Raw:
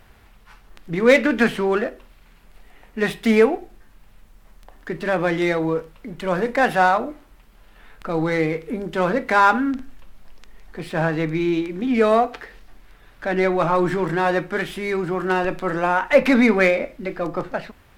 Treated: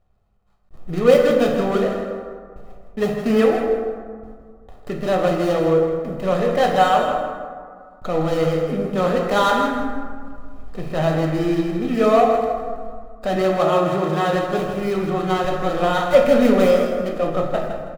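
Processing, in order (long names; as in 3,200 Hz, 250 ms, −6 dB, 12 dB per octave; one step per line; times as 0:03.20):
running median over 25 samples
comb filter 1.6 ms, depth 46%
noise gate with hold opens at −35 dBFS
in parallel at 0 dB: downward compressor, threshold −33 dBFS, peak gain reduction 23.5 dB
0:13.36–0:14.33: on the sum: high-pass filter 160 Hz
on a send: repeating echo 161 ms, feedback 27%, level −9 dB
on the sum: dense smooth reverb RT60 1.9 s, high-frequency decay 0.4×, DRR 1.5 dB
level that may rise only so fast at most 510 dB per second
level −1.5 dB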